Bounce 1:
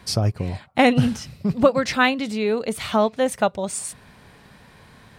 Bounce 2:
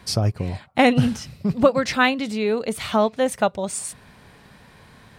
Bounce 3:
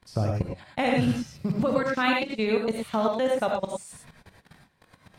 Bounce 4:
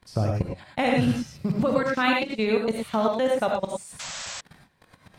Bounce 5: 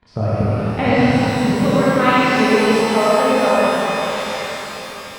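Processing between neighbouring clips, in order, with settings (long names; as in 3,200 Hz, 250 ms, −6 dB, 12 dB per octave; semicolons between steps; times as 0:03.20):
no processing that can be heard
output level in coarse steps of 24 dB; reverb whose tail is shaped and stops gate 130 ms rising, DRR 0 dB
sound drawn into the spectrogram noise, 0:03.99–0:04.41, 520–8,100 Hz −37 dBFS; level +1.5 dB
low-pass filter 3,100 Hz 12 dB per octave; reverb with rising layers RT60 3.7 s, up +12 semitones, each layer −8 dB, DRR −7 dB; level +1.5 dB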